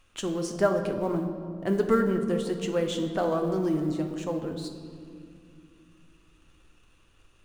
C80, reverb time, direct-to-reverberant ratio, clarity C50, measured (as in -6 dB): 8.5 dB, 2.3 s, 4.0 dB, 7.5 dB